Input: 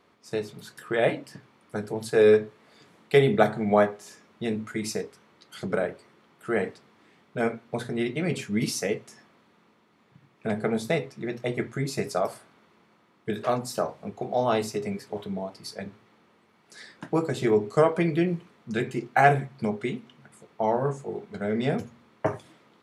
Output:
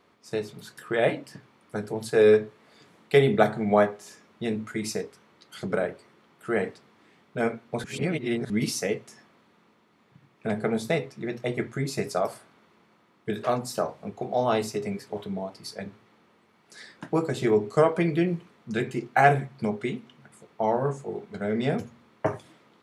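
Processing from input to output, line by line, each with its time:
7.84–8.5 reverse

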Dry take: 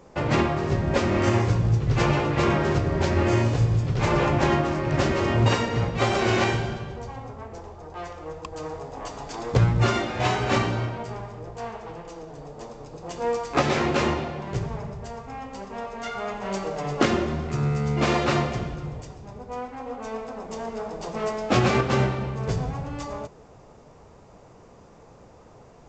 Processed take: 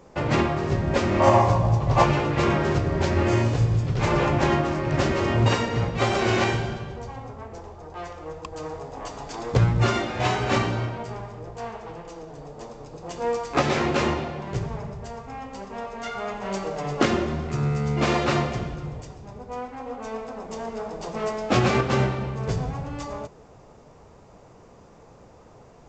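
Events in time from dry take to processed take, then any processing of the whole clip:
1.2–2.04 spectral gain 520–1200 Hz +12 dB

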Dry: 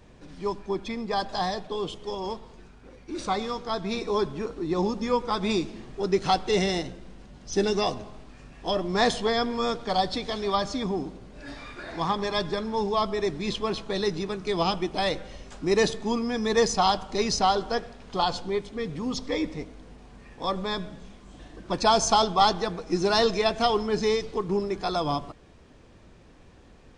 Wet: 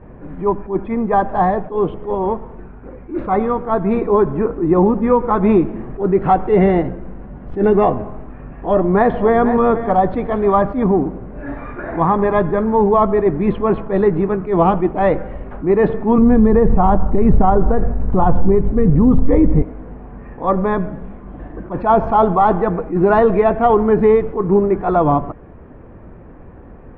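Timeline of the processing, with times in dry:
8.72–9.46 echo throw 0.48 s, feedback 15%, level -13 dB
16.18–19.62 RIAA curve playback
whole clip: Bessel low-pass 1200 Hz, order 6; maximiser +17.5 dB; attack slew limiter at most 190 dB/s; gain -3 dB

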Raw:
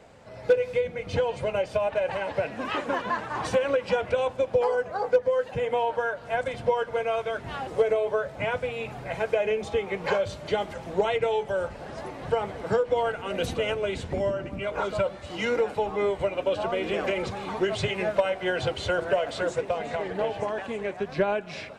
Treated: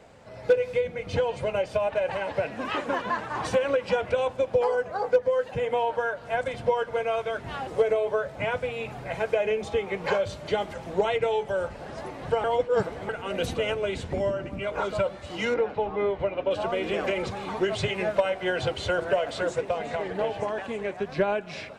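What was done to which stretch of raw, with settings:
12.44–13.09 reverse
15.54–16.51 air absorption 210 m

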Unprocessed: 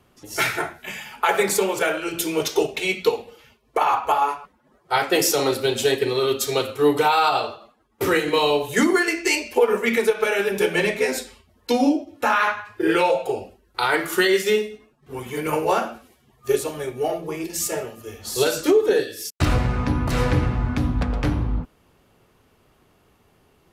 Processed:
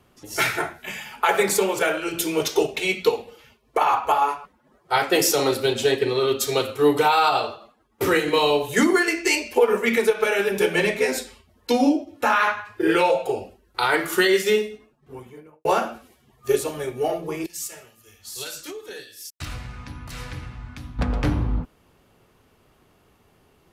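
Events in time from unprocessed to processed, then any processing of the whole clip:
5.73–6.4 high shelf 8100 Hz -9.5 dB
14.68–15.65 studio fade out
17.46–20.99 passive tone stack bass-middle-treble 5-5-5

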